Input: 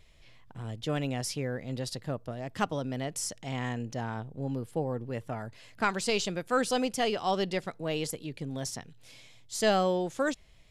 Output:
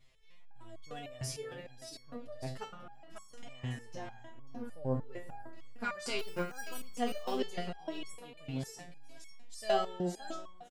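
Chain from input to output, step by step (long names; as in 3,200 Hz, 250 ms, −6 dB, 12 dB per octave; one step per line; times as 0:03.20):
0:02.71–0:03.47: compressor whose output falls as the input rises −46 dBFS, ratio −1
spring reverb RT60 2 s, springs 35/55 ms, chirp 35 ms, DRR 11.5 dB
0:06.19–0:06.81: bad sample-rate conversion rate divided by 6×, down filtered, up hold
on a send: single-tap delay 544 ms −8 dB
on the sum: step-sequenced resonator 6.6 Hz 130–1,100 Hz
level +4.5 dB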